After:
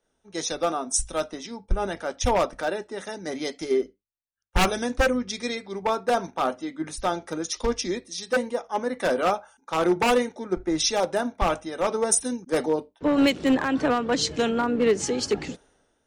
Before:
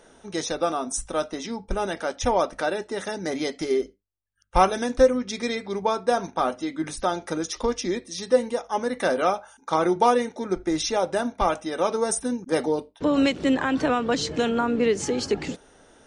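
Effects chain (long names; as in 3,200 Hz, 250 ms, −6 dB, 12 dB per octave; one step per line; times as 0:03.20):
tape wow and flutter 24 cents
wave folding −15 dBFS
multiband upward and downward expander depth 70%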